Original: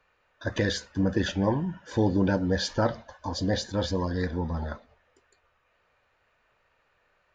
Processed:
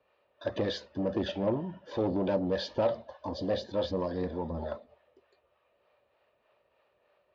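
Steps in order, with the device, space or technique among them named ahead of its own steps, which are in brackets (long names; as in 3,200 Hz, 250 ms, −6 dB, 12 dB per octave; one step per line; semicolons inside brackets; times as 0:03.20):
guitar amplifier with harmonic tremolo (two-band tremolo in antiphase 3.3 Hz, depth 50%, crossover 500 Hz; soft clipping −25.5 dBFS, distortion −11 dB; loudspeaker in its box 82–4,300 Hz, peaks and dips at 93 Hz −6 dB, 150 Hz −5 dB, 380 Hz +5 dB, 590 Hz +9 dB, 1,500 Hz −9 dB, 2,100 Hz −5 dB)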